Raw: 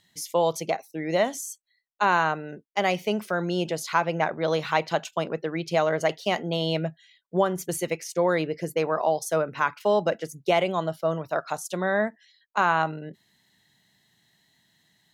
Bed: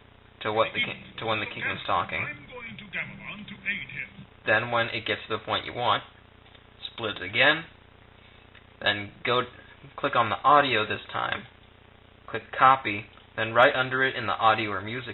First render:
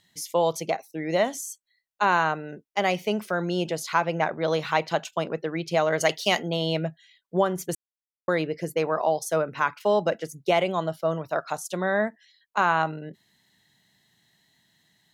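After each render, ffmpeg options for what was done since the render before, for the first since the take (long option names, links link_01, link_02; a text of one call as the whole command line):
ffmpeg -i in.wav -filter_complex "[0:a]asplit=3[link_01][link_02][link_03];[link_01]afade=type=out:start_time=5.91:duration=0.02[link_04];[link_02]highshelf=frequency=2400:gain=11,afade=type=in:start_time=5.91:duration=0.02,afade=type=out:start_time=6.47:duration=0.02[link_05];[link_03]afade=type=in:start_time=6.47:duration=0.02[link_06];[link_04][link_05][link_06]amix=inputs=3:normalize=0,asplit=3[link_07][link_08][link_09];[link_07]atrim=end=7.75,asetpts=PTS-STARTPTS,afade=type=out:start_time=7.746:duration=0.004:curve=hsin[link_10];[link_08]atrim=start=7.75:end=8.28,asetpts=PTS-STARTPTS,volume=0[link_11];[link_09]atrim=start=8.28,asetpts=PTS-STARTPTS,afade=type=in:duration=0.004:curve=hsin[link_12];[link_10][link_11][link_12]concat=n=3:v=0:a=1" out.wav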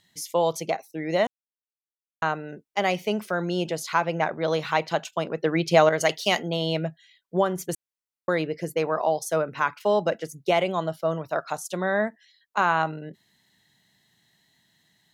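ffmpeg -i in.wav -filter_complex "[0:a]asplit=5[link_01][link_02][link_03][link_04][link_05];[link_01]atrim=end=1.27,asetpts=PTS-STARTPTS,afade=type=out:start_time=1.266:duration=0.004:curve=hsin[link_06];[link_02]atrim=start=1.27:end=2.22,asetpts=PTS-STARTPTS,volume=0[link_07];[link_03]atrim=start=2.22:end=5.432,asetpts=PTS-STARTPTS,afade=type=in:duration=0.004:curve=hsin[link_08];[link_04]atrim=start=5.428:end=5.892,asetpts=PTS-STARTPTS,volume=6dB[link_09];[link_05]atrim=start=5.888[link_10];[link_06][link_07][link_08]concat=n=3:v=0:a=1[link_11];[link_11][link_09]acrossfade=duration=0.004:curve1=hsin:curve2=hsin[link_12];[link_12][link_10]acrossfade=duration=0.004:curve1=hsin:curve2=hsin" out.wav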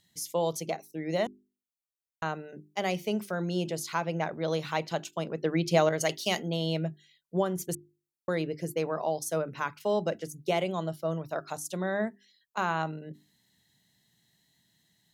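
ffmpeg -i in.wav -af "equalizer=frequency=1300:width=0.34:gain=-8.5,bandreject=frequency=50:width_type=h:width=6,bandreject=frequency=100:width_type=h:width=6,bandreject=frequency=150:width_type=h:width=6,bandreject=frequency=200:width_type=h:width=6,bandreject=frequency=250:width_type=h:width=6,bandreject=frequency=300:width_type=h:width=6,bandreject=frequency=350:width_type=h:width=6,bandreject=frequency=400:width_type=h:width=6" out.wav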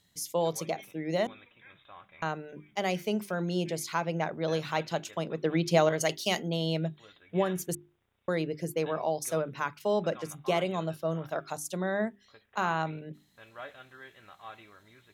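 ffmpeg -i in.wav -i bed.wav -filter_complex "[1:a]volume=-25dB[link_01];[0:a][link_01]amix=inputs=2:normalize=0" out.wav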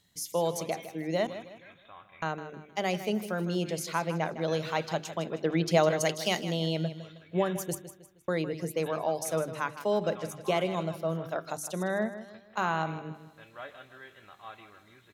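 ffmpeg -i in.wav -af "aecho=1:1:157|314|471|628:0.237|0.0925|0.0361|0.0141" out.wav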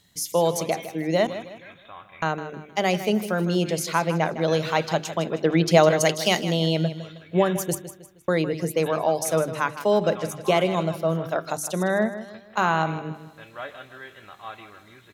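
ffmpeg -i in.wav -af "volume=7.5dB" out.wav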